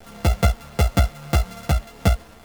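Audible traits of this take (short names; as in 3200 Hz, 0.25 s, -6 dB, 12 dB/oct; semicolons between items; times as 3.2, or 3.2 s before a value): a buzz of ramps at a fixed pitch in blocks of 64 samples; tremolo saw up 1.8 Hz, depth 30%; a quantiser's noise floor 8-bit, dither none; a shimmering, thickened sound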